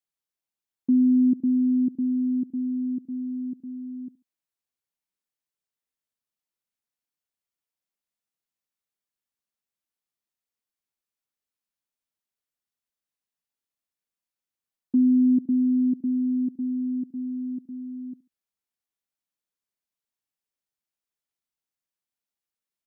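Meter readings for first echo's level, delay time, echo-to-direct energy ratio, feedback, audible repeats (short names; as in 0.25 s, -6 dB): -21.0 dB, 70 ms, -20.5 dB, 27%, 2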